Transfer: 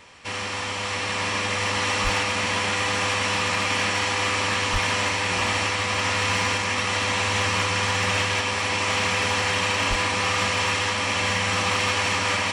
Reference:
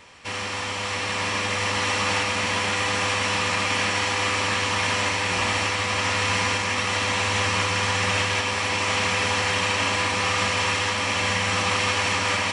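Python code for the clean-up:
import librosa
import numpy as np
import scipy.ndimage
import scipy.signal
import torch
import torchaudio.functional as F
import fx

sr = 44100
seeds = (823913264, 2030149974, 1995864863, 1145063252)

y = fx.fix_declip(x, sr, threshold_db=-15.0)
y = fx.highpass(y, sr, hz=140.0, slope=24, at=(2.03, 2.15), fade=0.02)
y = fx.highpass(y, sr, hz=140.0, slope=24, at=(4.72, 4.84), fade=0.02)
y = fx.highpass(y, sr, hz=140.0, slope=24, at=(9.89, 10.01), fade=0.02)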